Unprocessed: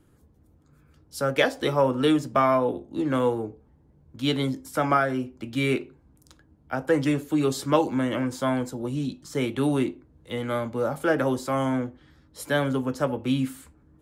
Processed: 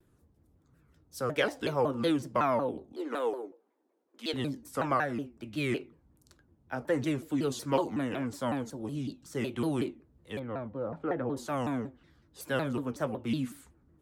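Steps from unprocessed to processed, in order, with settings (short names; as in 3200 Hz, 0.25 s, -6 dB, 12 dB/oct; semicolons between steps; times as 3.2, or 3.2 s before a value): 2.93–4.34 inverse Chebyshev high-pass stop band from 160 Hz, stop band 40 dB; 10.39–11.37 tape spacing loss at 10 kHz 42 dB; shaped vibrato saw down 5.4 Hz, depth 250 cents; gain -7 dB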